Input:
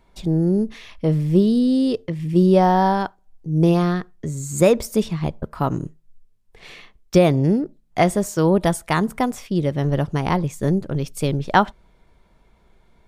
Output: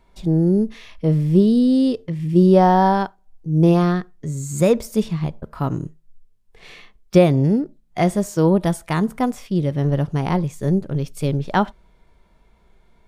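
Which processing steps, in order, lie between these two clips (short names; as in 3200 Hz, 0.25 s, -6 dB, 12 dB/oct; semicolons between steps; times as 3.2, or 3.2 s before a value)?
harmonic-percussive split percussive -7 dB; gain +2 dB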